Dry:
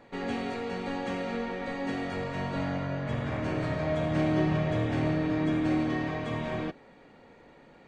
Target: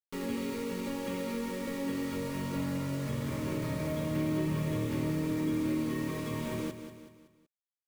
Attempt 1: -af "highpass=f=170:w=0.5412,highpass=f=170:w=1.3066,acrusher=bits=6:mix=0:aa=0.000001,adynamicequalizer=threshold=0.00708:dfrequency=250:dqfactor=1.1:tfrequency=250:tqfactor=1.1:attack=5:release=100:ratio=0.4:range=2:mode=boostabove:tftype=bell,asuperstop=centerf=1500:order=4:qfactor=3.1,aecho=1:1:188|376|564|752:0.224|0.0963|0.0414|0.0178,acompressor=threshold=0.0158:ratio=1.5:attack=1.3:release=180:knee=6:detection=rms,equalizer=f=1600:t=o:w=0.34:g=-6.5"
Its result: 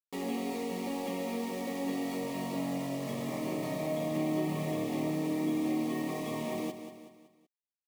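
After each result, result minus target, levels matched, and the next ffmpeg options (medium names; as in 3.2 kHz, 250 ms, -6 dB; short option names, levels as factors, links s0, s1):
125 Hz band -5.5 dB; 1 kHz band +3.5 dB
-af "acrusher=bits=6:mix=0:aa=0.000001,adynamicequalizer=threshold=0.00708:dfrequency=250:dqfactor=1.1:tfrequency=250:tqfactor=1.1:attack=5:release=100:ratio=0.4:range=2:mode=boostabove:tftype=bell,asuperstop=centerf=1500:order=4:qfactor=3.1,aecho=1:1:188|376|564|752:0.224|0.0963|0.0414|0.0178,acompressor=threshold=0.0158:ratio=1.5:attack=1.3:release=180:knee=6:detection=rms,equalizer=f=1600:t=o:w=0.34:g=-6.5"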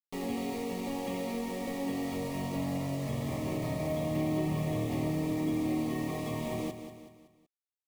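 1 kHz band +3.0 dB
-af "acrusher=bits=6:mix=0:aa=0.000001,adynamicequalizer=threshold=0.00708:dfrequency=250:dqfactor=1.1:tfrequency=250:tqfactor=1.1:attack=5:release=100:ratio=0.4:range=2:mode=boostabove:tftype=bell,asuperstop=centerf=720:order=4:qfactor=3.1,aecho=1:1:188|376|564|752:0.224|0.0963|0.0414|0.0178,acompressor=threshold=0.0158:ratio=1.5:attack=1.3:release=180:knee=6:detection=rms,equalizer=f=1600:t=o:w=0.34:g=-6.5"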